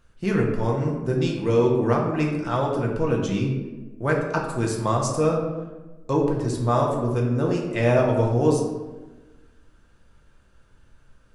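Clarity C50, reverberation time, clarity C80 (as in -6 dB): 3.5 dB, 1.2 s, 6.0 dB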